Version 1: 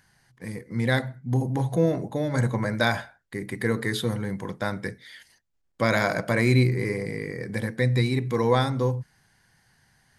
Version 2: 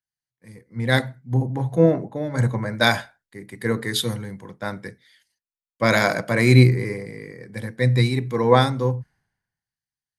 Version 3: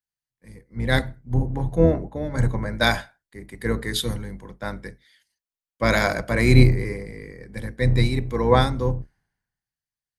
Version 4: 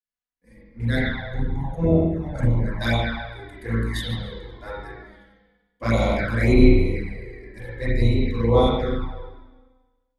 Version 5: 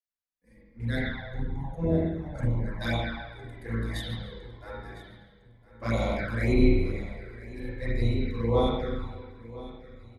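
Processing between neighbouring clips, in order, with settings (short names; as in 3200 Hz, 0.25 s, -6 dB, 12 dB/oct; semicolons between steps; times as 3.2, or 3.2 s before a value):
three-band expander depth 100%; gain +2 dB
octaver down 2 oct, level -2 dB; gain -2 dB
spring tank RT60 1.3 s, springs 35/43 ms, chirp 40 ms, DRR -8 dB; envelope flanger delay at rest 4.1 ms, full sweep at -7.5 dBFS; gain -7 dB
feedback echo 1.007 s, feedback 49%, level -18 dB; gain -7 dB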